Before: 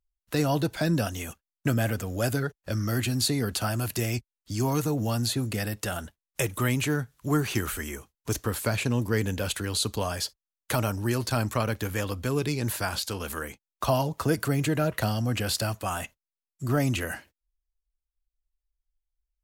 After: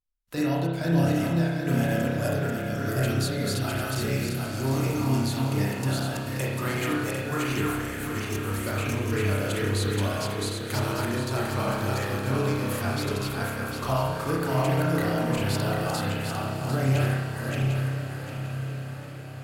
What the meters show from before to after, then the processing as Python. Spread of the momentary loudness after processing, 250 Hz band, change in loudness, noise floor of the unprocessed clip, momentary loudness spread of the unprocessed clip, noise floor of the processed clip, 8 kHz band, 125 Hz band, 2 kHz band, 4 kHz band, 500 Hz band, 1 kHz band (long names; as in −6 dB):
6 LU, +2.0 dB, +1.0 dB, below −85 dBFS, 8 LU, −35 dBFS, −3.0 dB, +3.0 dB, +2.0 dB, −1.5 dB, +2.0 dB, +2.5 dB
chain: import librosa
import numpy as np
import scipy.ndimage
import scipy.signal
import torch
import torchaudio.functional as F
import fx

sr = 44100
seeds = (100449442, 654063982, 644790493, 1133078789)

y = fx.reverse_delay_fb(x, sr, ms=375, feedback_pct=58, wet_db=-1.0)
y = fx.echo_diffused(y, sr, ms=1088, feedback_pct=55, wet_db=-10.5)
y = fx.rev_spring(y, sr, rt60_s=1.0, pass_ms=(30,), chirp_ms=65, drr_db=-3.5)
y = y * librosa.db_to_amplitude(-7.0)